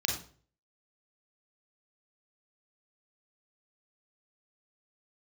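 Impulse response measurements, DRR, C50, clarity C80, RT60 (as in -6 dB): 0.5 dB, 5.0 dB, 10.0 dB, 0.45 s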